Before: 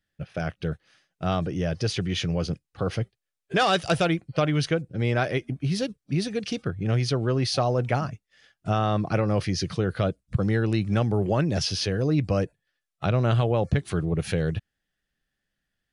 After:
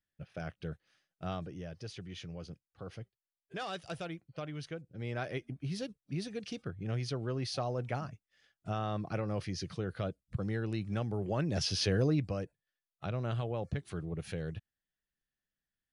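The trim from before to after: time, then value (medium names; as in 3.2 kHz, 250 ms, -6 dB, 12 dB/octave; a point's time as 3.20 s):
1.24 s -11.5 dB
1.73 s -18 dB
4.68 s -18 dB
5.36 s -11.5 dB
11.21 s -11.5 dB
11.98 s -2.5 dB
12.37 s -13 dB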